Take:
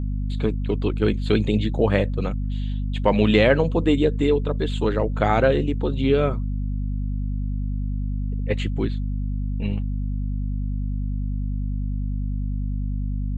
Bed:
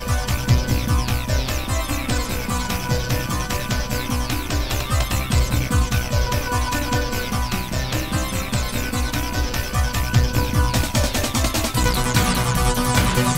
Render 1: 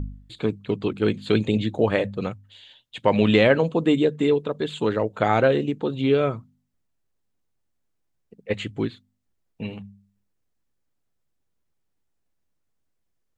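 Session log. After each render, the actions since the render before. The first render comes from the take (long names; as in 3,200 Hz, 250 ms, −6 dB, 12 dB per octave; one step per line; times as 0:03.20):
hum removal 50 Hz, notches 5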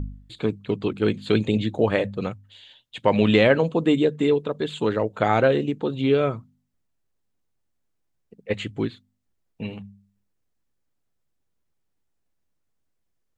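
no processing that can be heard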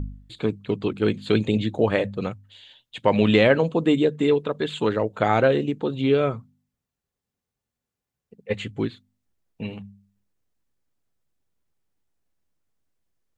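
0:04.28–0:04.89: parametric band 1,800 Hz +4 dB 1.9 octaves
0:06.33–0:08.79: notch comb filter 320 Hz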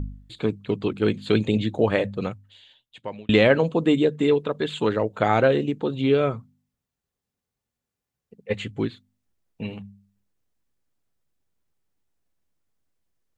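0:02.25–0:03.29: fade out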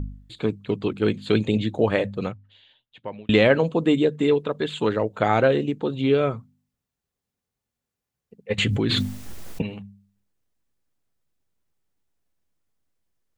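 0:02.31–0:03.25: high-frequency loss of the air 160 metres
0:08.58–0:09.62: envelope flattener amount 100%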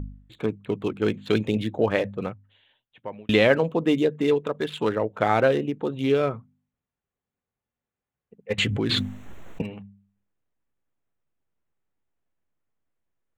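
adaptive Wiener filter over 9 samples
low-shelf EQ 330 Hz −4 dB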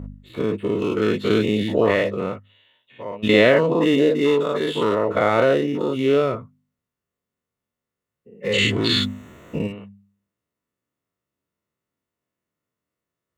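every bin's largest magnitude spread in time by 120 ms
notch comb filter 800 Hz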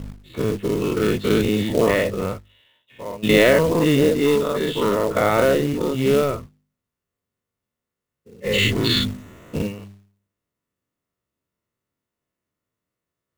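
sub-octave generator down 1 octave, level −5 dB
floating-point word with a short mantissa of 2 bits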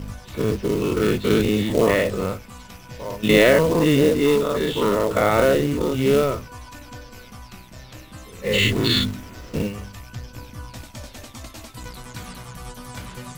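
mix in bed −18 dB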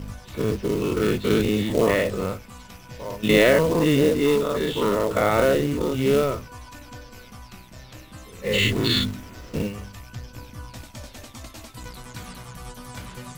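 level −2 dB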